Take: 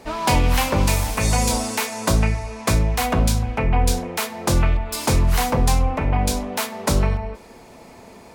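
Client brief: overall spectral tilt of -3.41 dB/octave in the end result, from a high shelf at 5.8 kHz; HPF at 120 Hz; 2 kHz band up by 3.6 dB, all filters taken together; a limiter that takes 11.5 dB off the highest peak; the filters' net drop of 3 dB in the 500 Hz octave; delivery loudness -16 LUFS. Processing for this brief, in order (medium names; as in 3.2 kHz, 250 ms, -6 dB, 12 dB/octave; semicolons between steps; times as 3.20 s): high-pass 120 Hz; peaking EQ 500 Hz -4 dB; peaking EQ 2 kHz +3.5 dB; treble shelf 5.8 kHz +8.5 dB; trim +9 dB; peak limiter -6 dBFS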